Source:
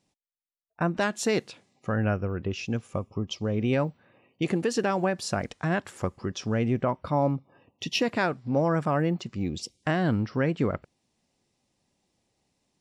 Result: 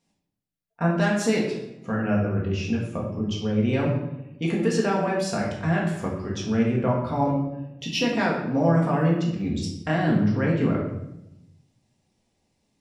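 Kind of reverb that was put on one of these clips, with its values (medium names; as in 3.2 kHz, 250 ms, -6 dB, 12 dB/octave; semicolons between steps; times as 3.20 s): simulated room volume 270 m³, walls mixed, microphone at 1.7 m; trim -3 dB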